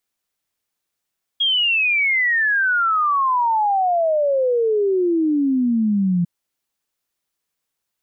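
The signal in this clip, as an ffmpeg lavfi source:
-f lavfi -i "aevalsrc='0.178*clip(min(t,4.85-t)/0.01,0,1)*sin(2*PI*3300*4.85/log(170/3300)*(exp(log(170/3300)*t/4.85)-1))':d=4.85:s=44100"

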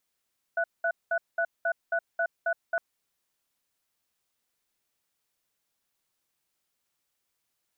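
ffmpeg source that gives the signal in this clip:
-f lavfi -i "aevalsrc='0.0473*(sin(2*PI*673*t)+sin(2*PI*1480*t))*clip(min(mod(t,0.27),0.07-mod(t,0.27))/0.005,0,1)':d=2.21:s=44100"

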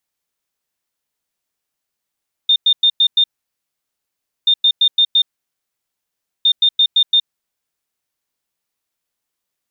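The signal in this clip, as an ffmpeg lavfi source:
-f lavfi -i "aevalsrc='0.376*sin(2*PI*3630*t)*clip(min(mod(mod(t,1.98),0.17),0.07-mod(mod(t,1.98),0.17))/0.005,0,1)*lt(mod(t,1.98),0.85)':d=5.94:s=44100"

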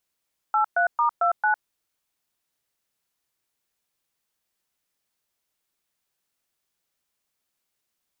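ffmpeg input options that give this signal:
-f lavfi -i "aevalsrc='0.0944*clip(min(mod(t,0.224),0.105-mod(t,0.224))/0.002,0,1)*(eq(floor(t/0.224),0)*(sin(2*PI*852*mod(t,0.224))+sin(2*PI*1336*mod(t,0.224)))+eq(floor(t/0.224),1)*(sin(2*PI*697*mod(t,0.224))+sin(2*PI*1477*mod(t,0.224)))+eq(floor(t/0.224),2)*(sin(2*PI*941*mod(t,0.224))+sin(2*PI*1209*mod(t,0.224)))+eq(floor(t/0.224),3)*(sin(2*PI*697*mod(t,0.224))+sin(2*PI*1336*mod(t,0.224)))+eq(floor(t/0.224),4)*(sin(2*PI*852*mod(t,0.224))+sin(2*PI*1477*mod(t,0.224))))':d=1.12:s=44100"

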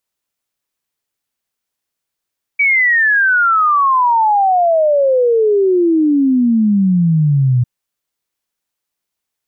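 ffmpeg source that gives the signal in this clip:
-f lavfi -i "aevalsrc='0.355*clip(min(t,5.05-t)/0.01,0,1)*sin(2*PI*2300*5.05/log(120/2300)*(exp(log(120/2300)*t/5.05)-1))':d=5.05:s=44100"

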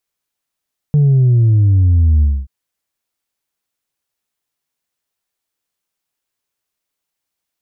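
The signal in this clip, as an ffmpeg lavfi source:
-f lavfi -i "aevalsrc='0.398*clip((1.53-t)/0.25,0,1)*tanh(1.19*sin(2*PI*150*1.53/log(65/150)*(exp(log(65/150)*t/1.53)-1)))/tanh(1.19)':d=1.53:s=44100"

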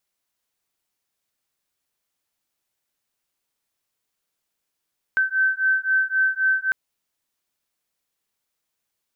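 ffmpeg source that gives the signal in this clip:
-f lavfi -i "aevalsrc='0.0891*(sin(2*PI*1540*t)+sin(2*PI*1543.8*t))':d=1.55:s=44100"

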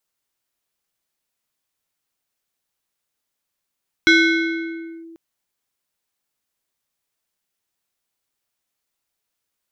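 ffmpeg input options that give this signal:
-f lavfi -i "aevalsrc='0.398*pow(10,-3*t/2.1)*sin(2*PI*330*t+1.5*clip(1-t/0.98,0,1)*sin(2*PI*5.57*330*t))':d=1.09:s=44100"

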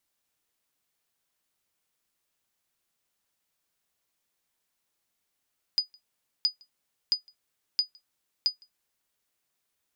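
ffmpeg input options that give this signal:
-f lavfi -i "aevalsrc='0.178*(sin(2*PI*4950*mod(t,0.67))*exp(-6.91*mod(t,0.67)/0.12)+0.0316*sin(2*PI*4950*max(mod(t,0.67)-0.16,0))*exp(-6.91*max(mod(t,0.67)-0.16,0)/0.12))':d=3.35:s=44100"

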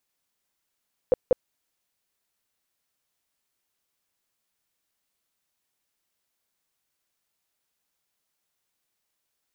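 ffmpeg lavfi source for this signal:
-f lavfi -i "aevalsrc='0.211*sin(2*PI*506*mod(t,0.19))*lt(mod(t,0.19),9/506)':d=0.38:s=44100"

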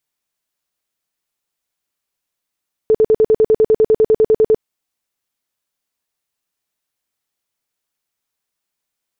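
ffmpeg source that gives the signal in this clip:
-f lavfi -i "aevalsrc='0.422*sin(2*PI*437*mod(t,0.1))*lt(mod(t,0.1),20/437)':d=1.7:s=44100"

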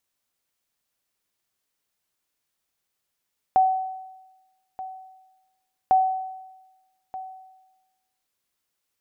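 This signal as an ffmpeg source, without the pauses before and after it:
-f lavfi -i "aevalsrc='0.251*(sin(2*PI*755*mod(t,2.35))*exp(-6.91*mod(t,2.35)/1.1)+0.141*sin(2*PI*755*max(mod(t,2.35)-1.23,0))*exp(-6.91*max(mod(t,2.35)-1.23,0)/1.1))':d=4.7:s=44100"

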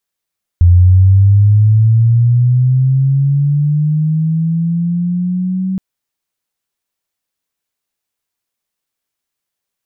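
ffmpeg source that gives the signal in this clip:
-f lavfi -i "aevalsrc='pow(10,(-3-11*t/5.17)/20)*sin(2*PI*(86*t+104*t*t/(2*5.17)))':d=5.17:s=44100"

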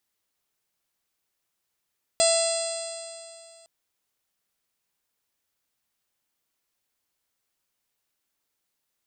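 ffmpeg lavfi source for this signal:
-f lavfi -i "aevalsrc='0.112*pow(10,-3*t/2.52)*sin(2*PI*661.73*t)+0.0141*pow(10,-3*t/2.52)*sin(2*PI*1327.8*t)+0.0158*pow(10,-3*t/2.52)*sin(2*PI*2002.54*t)+0.0224*pow(10,-3*t/2.52)*sin(2*PI*2690.13*t)+0.0282*pow(10,-3*t/2.52)*sin(2*PI*3394.67*t)+0.0398*pow(10,-3*t/2.52)*sin(2*PI*4120.06*t)+0.0501*pow(10,-3*t/2.52)*sin(2*PI*4870.01*t)+0.0141*pow(10,-3*t/2.52)*sin(2*PI*5648.02*t)+0.0158*pow(10,-3*t/2.52)*sin(2*PI*6457.34*t)+0.0422*pow(10,-3*t/2.52)*sin(2*PI*7300.98*t)+0.0708*pow(10,-3*t/2.52)*sin(2*PI*8181.73*t)':d=1.46:s=44100"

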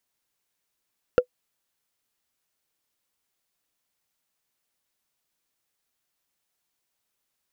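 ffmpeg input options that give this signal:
-f lavfi -i "aevalsrc='0.422*pow(10,-3*t/0.08)*sin(2*PI*498*t)+0.15*pow(10,-3*t/0.024)*sin(2*PI*1373*t)+0.0531*pow(10,-3*t/0.011)*sin(2*PI*2691.2*t)+0.0188*pow(10,-3*t/0.006)*sin(2*PI*4448.6*t)+0.00668*pow(10,-3*t/0.004)*sin(2*PI*6643.3*t)':d=0.45:s=44100"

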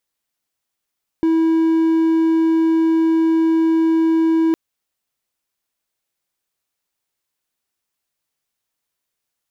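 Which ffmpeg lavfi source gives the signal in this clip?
-f lavfi -i "aevalsrc='0.299*(1-4*abs(mod(325*t+0.25,1)-0.5))':d=3.31:s=44100"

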